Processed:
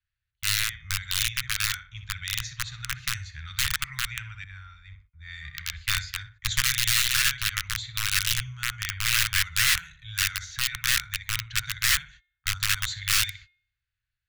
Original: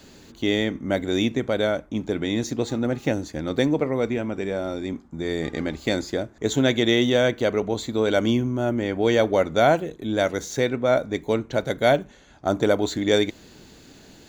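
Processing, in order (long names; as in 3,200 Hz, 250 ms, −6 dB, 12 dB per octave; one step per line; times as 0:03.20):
feedback echo with a low-pass in the loop 62 ms, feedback 33%, low-pass 4,700 Hz, level −8 dB
noise gate −38 dBFS, range −30 dB
low-pass that shuts in the quiet parts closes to 2,100 Hz, open at −14 dBFS
hum removal 357 Hz, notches 11
wrap-around overflow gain 14 dB
inverse Chebyshev band-stop filter 240–650 Hz, stop band 60 dB
0:04.44–0:06.61: multiband upward and downward expander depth 70%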